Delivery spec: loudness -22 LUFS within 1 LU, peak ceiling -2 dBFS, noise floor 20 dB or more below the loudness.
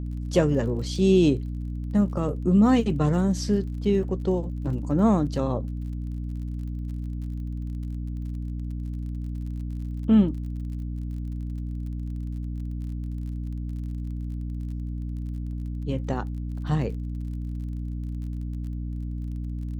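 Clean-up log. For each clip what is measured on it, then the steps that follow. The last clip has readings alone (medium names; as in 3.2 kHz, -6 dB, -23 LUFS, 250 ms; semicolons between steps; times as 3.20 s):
tick rate 35 per s; hum 60 Hz; highest harmonic 300 Hz; hum level -28 dBFS; loudness -27.5 LUFS; peak level -7.0 dBFS; loudness target -22.0 LUFS
-> de-click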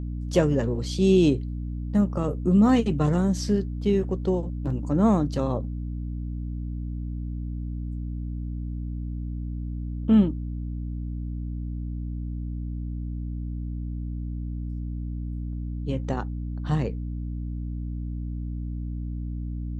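tick rate 0 per s; hum 60 Hz; highest harmonic 300 Hz; hum level -29 dBFS
-> de-hum 60 Hz, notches 5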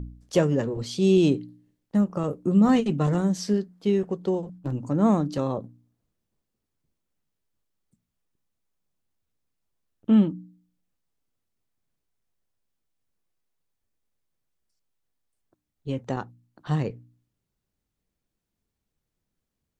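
hum not found; loudness -24.5 LUFS; peak level -8.0 dBFS; loudness target -22.0 LUFS
-> trim +2.5 dB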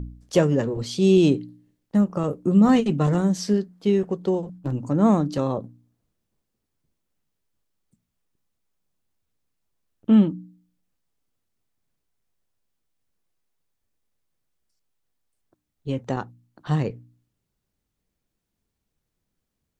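loudness -22.0 LUFS; peak level -5.5 dBFS; noise floor -80 dBFS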